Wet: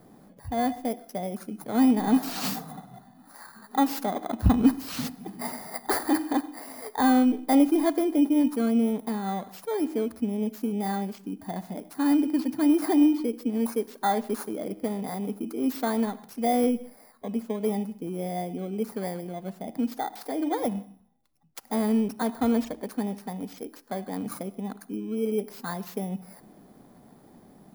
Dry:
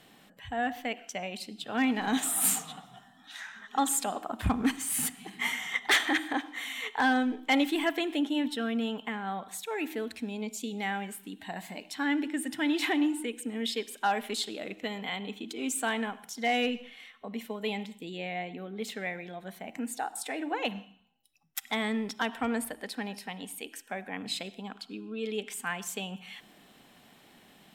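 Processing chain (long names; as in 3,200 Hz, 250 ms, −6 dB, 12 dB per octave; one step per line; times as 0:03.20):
samples in bit-reversed order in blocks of 16 samples
tilt shelving filter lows +8 dB, about 1,300 Hz
level +1 dB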